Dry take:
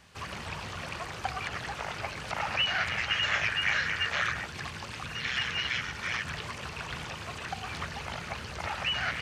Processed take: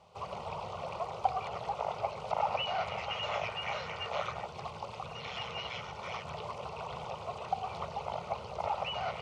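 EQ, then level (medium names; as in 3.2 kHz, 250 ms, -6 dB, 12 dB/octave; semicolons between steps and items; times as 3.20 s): band-pass filter 550 Hz, Q 0.64; static phaser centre 700 Hz, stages 4; +6.5 dB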